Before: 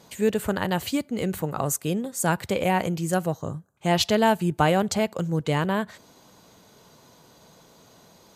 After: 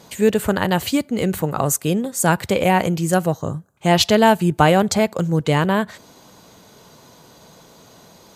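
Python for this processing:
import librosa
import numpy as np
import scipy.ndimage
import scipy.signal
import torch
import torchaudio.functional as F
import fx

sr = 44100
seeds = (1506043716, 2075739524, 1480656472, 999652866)

y = fx.notch(x, sr, hz=2900.0, q=12.0, at=(4.81, 5.21))
y = y * librosa.db_to_amplitude(6.5)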